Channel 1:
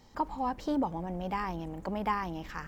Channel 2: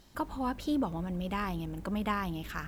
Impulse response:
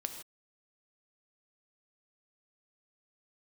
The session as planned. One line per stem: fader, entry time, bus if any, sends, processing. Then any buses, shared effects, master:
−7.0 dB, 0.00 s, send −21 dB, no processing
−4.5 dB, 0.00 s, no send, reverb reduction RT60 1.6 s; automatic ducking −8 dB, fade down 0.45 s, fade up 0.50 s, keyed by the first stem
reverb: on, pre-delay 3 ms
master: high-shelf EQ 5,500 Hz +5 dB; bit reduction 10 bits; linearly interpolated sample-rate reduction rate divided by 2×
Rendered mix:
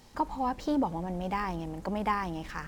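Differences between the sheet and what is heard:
stem 1 −7.0 dB → +1.0 dB
stem 2 −4.5 dB → −14.5 dB

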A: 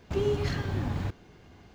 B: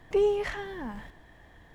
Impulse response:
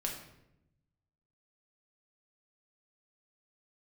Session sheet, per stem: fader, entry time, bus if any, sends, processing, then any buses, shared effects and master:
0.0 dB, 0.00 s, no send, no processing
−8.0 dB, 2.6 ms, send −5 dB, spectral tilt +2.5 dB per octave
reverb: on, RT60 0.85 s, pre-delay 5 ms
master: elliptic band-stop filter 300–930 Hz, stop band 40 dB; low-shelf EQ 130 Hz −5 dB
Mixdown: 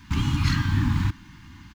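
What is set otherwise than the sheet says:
stem A 0.0 dB → +9.0 dB
master: missing low-shelf EQ 130 Hz −5 dB

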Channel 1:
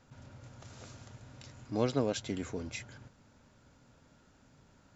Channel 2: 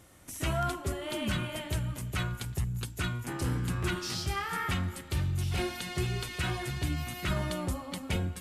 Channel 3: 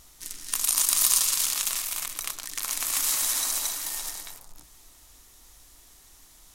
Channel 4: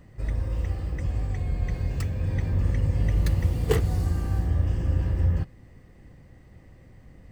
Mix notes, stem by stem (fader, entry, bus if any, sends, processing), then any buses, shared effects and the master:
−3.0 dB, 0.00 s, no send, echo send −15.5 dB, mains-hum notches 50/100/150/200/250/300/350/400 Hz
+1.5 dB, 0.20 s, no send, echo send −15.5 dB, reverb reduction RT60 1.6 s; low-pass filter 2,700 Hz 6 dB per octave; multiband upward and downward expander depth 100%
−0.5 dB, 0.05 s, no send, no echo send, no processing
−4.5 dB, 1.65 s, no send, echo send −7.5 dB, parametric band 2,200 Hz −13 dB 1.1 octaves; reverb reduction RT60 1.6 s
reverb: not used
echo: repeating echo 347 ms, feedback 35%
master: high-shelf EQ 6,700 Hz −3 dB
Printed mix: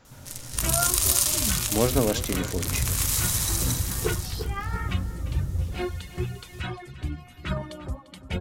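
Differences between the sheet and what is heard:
stem 1 −3.0 dB → +7.5 dB
stem 4: entry 1.65 s → 0.35 s
master: missing high-shelf EQ 6,700 Hz −3 dB

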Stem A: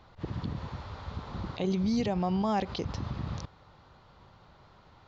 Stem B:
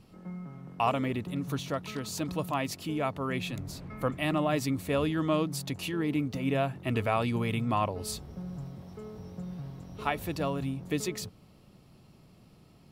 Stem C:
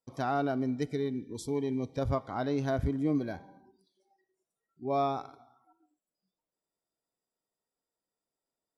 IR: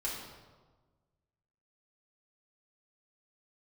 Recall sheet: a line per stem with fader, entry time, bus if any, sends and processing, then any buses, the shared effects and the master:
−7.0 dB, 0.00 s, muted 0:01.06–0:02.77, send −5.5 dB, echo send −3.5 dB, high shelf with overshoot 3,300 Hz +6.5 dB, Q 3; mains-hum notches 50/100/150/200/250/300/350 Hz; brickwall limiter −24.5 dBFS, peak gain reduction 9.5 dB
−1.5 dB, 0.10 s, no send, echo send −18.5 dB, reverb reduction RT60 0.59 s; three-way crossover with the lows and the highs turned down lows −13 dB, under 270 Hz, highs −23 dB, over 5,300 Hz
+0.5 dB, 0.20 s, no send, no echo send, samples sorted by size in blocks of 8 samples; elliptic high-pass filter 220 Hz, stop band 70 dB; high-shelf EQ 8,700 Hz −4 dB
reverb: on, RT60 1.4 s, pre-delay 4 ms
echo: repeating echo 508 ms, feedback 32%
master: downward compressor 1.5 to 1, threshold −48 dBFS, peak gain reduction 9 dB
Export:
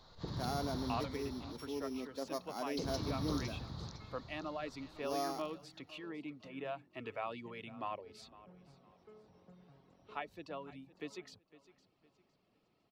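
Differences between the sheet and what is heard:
stem B −1.5 dB → −11.5 dB
stem C +0.5 dB → −8.5 dB
master: missing downward compressor 1.5 to 1, threshold −48 dBFS, peak gain reduction 9 dB

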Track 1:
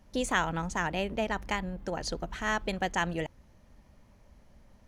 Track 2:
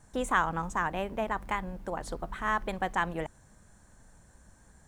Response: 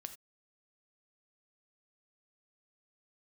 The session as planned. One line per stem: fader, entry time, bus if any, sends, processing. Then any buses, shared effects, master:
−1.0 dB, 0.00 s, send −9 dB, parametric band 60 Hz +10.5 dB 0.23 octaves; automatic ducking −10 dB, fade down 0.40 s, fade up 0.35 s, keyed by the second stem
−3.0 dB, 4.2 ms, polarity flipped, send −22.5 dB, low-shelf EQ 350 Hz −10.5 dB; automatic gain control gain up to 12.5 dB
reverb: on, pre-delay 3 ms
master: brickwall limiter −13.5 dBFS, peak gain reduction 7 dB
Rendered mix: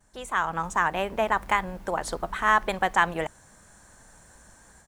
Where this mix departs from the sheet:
stem 1 −1.0 dB → −12.0 dB
master: missing brickwall limiter −13.5 dBFS, peak gain reduction 7 dB

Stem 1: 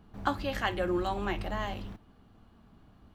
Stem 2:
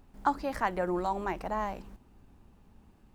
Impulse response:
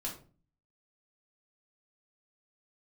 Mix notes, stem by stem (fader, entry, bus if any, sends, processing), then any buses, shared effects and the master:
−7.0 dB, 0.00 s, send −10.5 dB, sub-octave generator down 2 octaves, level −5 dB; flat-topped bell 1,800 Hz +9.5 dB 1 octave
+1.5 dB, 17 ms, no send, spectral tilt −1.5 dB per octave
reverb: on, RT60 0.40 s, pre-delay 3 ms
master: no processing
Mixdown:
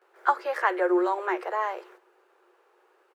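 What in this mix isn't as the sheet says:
stem 2 +1.5 dB → +8.0 dB
master: extra Chebyshev high-pass with heavy ripple 350 Hz, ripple 6 dB

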